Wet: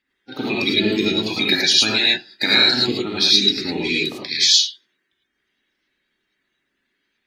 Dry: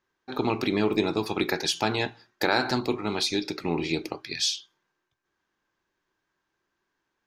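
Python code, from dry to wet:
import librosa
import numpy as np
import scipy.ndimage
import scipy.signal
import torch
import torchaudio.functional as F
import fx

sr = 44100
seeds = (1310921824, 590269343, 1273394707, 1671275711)

y = fx.spec_quant(x, sr, step_db=30)
y = fx.graphic_eq(y, sr, hz=(125, 250, 500, 1000, 2000, 4000, 8000), db=(-7, 10, -3, -10, 8, 11, 4))
y = fx.rev_gated(y, sr, seeds[0], gate_ms=130, shape='rising', drr_db=-4.0)
y = y * 10.0 ** (-2.0 / 20.0)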